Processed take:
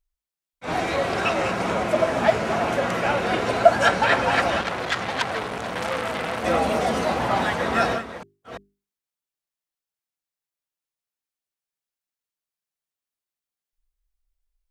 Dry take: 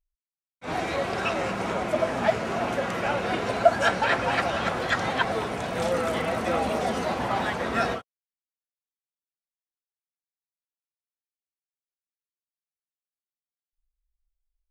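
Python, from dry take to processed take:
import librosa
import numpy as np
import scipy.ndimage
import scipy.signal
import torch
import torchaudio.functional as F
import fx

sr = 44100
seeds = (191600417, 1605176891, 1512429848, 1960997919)

y = fx.reverse_delay(x, sr, ms=343, wet_db=-11.0)
y = fx.hum_notches(y, sr, base_hz=50, count=8)
y = fx.transformer_sat(y, sr, knee_hz=3200.0, at=(4.61, 6.44))
y = y * librosa.db_to_amplitude(4.0)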